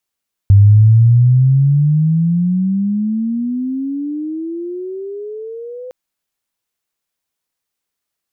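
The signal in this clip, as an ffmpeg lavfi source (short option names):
-f lavfi -i "aevalsrc='pow(10,(-3-23.5*t/5.41)/20)*sin(2*PI*98*5.41/log(510/98)*(exp(log(510/98)*t/5.41)-1))':d=5.41:s=44100"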